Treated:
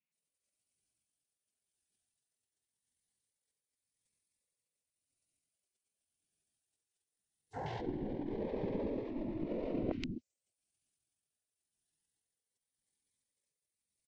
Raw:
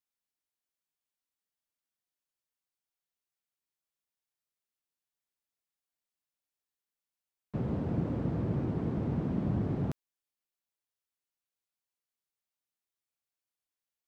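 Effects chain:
three-band delay without the direct sound mids, highs, lows 120/260 ms, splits 420/3,100 Hz
rotating-speaker cabinet horn 0.9 Hz
brickwall limiter −33 dBFS, peak gain reduction 11 dB
treble cut that deepens with the level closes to 1,300 Hz, closed at −27 dBFS
parametric band 170 Hz −9.5 dB 1.1 octaves
in parallel at +2.5 dB: compressor whose output falls as the input rises −47 dBFS, ratio −0.5
on the sum: gate on every frequency bin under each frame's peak −15 dB weak
parametric band 2,300 Hz −14.5 dB 0.67 octaves
pitch shifter −11 semitones
phaser whose notches keep moving one way rising 0.21 Hz
level +18 dB

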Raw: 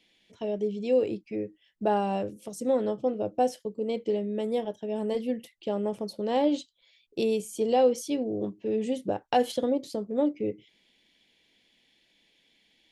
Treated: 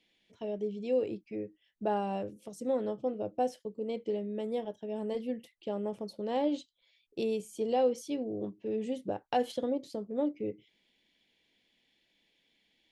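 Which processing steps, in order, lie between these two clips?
high-shelf EQ 5,800 Hz −5.5 dB
level −5.5 dB

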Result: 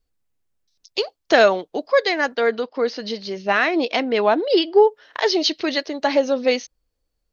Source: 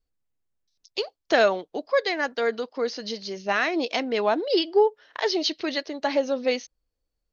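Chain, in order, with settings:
0:02.35–0:04.83: low-pass filter 4,300 Hz 12 dB per octave
level +5.5 dB

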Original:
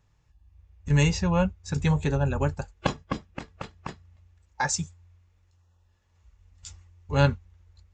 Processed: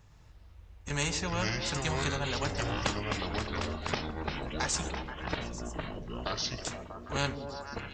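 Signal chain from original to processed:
echo through a band-pass that steps 120 ms, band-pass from 280 Hz, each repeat 0.7 octaves, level −7 dB
delay with pitch and tempo change per echo 118 ms, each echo −5 semitones, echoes 3
every bin compressed towards the loudest bin 2 to 1
level −6 dB

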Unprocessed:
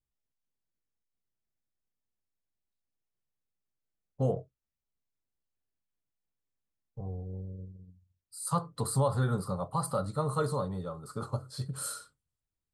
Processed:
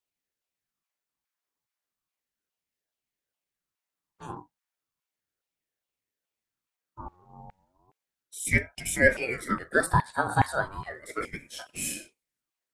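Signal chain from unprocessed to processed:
auto-filter high-pass saw down 2.4 Hz 410–1,900 Hz
ring modulator whose carrier an LFO sweeps 740 Hz, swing 55%, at 0.34 Hz
level +7 dB

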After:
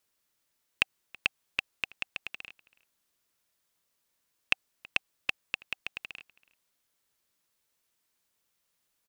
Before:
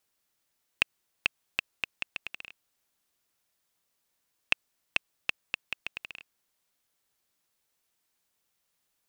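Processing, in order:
notch filter 770 Hz, Q 12
slap from a distant wall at 56 metres, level −22 dB

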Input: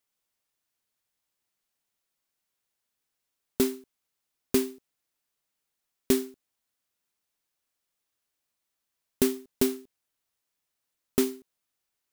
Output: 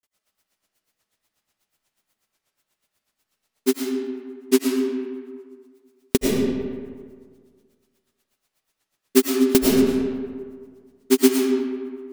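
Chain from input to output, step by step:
granular cloud 80 ms, grains 8.2 per second, spray 100 ms, pitch spread up and down by 0 semitones
comb and all-pass reverb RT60 1.8 s, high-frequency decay 0.55×, pre-delay 65 ms, DRR 0.5 dB
boost into a limiter +15.5 dB
level −1.5 dB

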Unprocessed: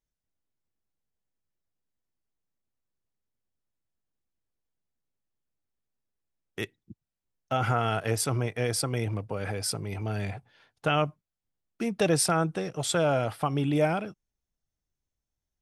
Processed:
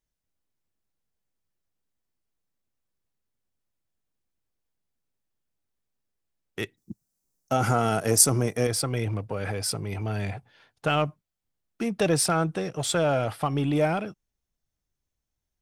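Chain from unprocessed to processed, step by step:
0:06.77–0:08.67: drawn EQ curve 110 Hz 0 dB, 200 Hz +7 dB, 3,300 Hz −3 dB, 5,900 Hz +13 dB
in parallel at −9 dB: hard clipping −30 dBFS, distortion −4 dB

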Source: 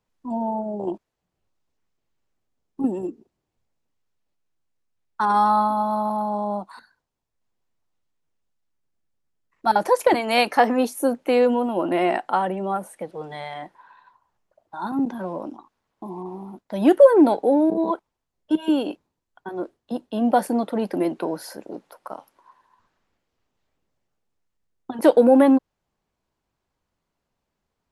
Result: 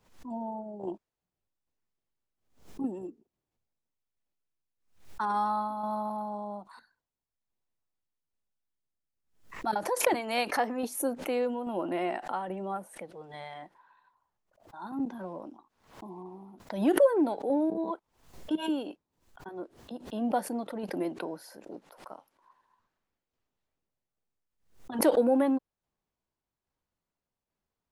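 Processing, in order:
shaped tremolo saw down 1.2 Hz, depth 45%
background raised ahead of every attack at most 120 dB per second
level −8.5 dB

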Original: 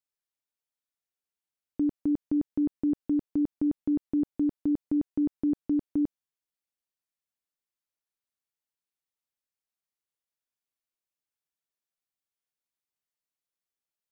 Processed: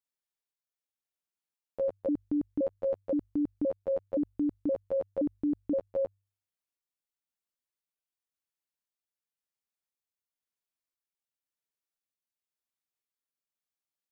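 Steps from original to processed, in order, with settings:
pitch shifter gated in a rhythm +10.5 semitones, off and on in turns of 521 ms
hum removal 49.53 Hz, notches 2
level −3 dB

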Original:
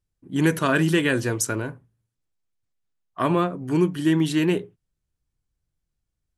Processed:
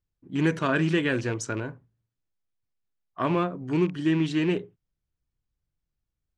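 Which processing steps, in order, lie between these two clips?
loose part that buzzes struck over −24 dBFS, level −25 dBFS
low-pass filter 7,300 Hz 24 dB per octave
high-shelf EQ 4,700 Hz −6 dB
level −3.5 dB

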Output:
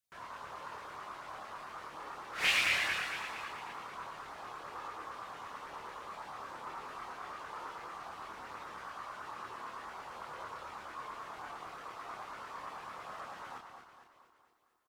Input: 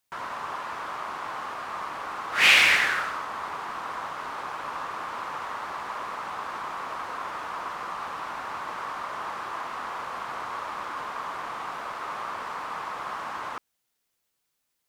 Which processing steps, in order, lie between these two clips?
repeating echo 231 ms, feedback 54%, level −7.5 dB
auto-filter notch saw up 9 Hz 650–3,700 Hz
multi-voice chorus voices 4, 0.18 Hz, delay 27 ms, depth 1.5 ms
level −7 dB

